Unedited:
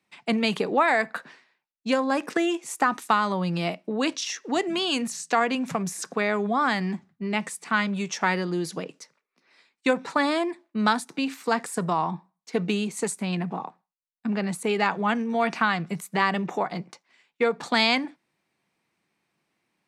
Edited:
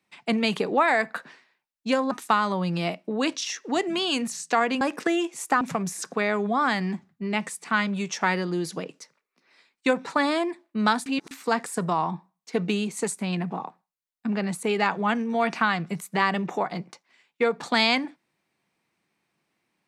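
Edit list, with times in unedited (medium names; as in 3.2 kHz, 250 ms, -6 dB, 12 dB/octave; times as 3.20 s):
2.11–2.91 s: move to 5.61 s
11.06–11.31 s: reverse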